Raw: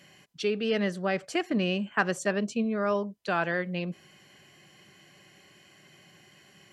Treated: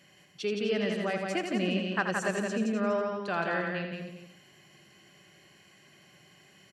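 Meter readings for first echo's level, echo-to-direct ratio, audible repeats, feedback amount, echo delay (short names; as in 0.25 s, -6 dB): -7.0 dB, -1.0 dB, 6, no steady repeat, 82 ms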